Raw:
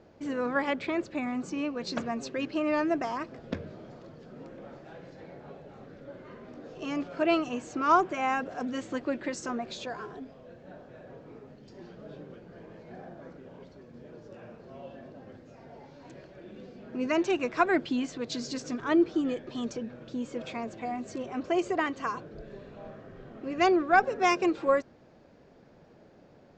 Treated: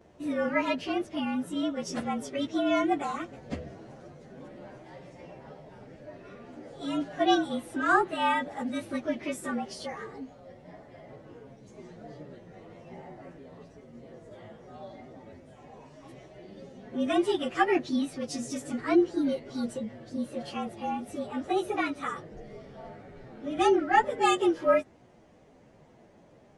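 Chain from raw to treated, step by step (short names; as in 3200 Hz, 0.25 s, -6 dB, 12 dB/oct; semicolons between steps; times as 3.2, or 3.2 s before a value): inharmonic rescaling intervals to 110%; gain +3 dB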